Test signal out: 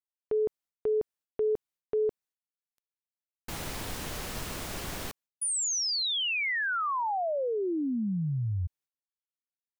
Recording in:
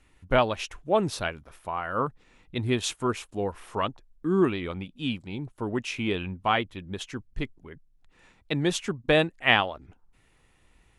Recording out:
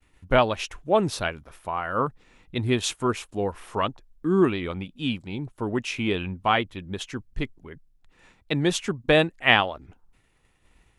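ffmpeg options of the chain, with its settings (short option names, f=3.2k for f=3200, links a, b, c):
-af "agate=range=-33dB:threshold=-57dB:ratio=3:detection=peak,volume=2.5dB"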